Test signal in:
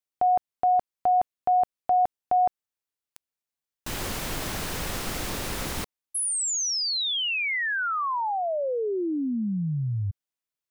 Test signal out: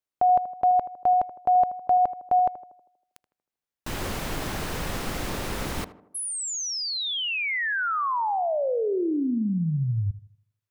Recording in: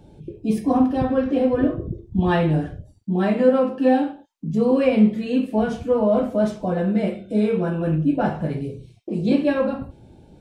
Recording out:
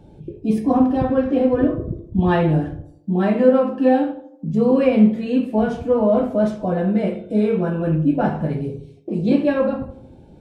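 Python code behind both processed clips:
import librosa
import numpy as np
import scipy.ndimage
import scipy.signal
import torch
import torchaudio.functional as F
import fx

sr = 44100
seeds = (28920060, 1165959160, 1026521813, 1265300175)

p1 = fx.high_shelf(x, sr, hz=3000.0, db=-6.5)
p2 = p1 + fx.echo_tape(p1, sr, ms=79, feedback_pct=60, wet_db=-12.5, lp_hz=1200.0, drive_db=6.0, wow_cents=6, dry=0)
y = p2 * 10.0 ** (2.0 / 20.0)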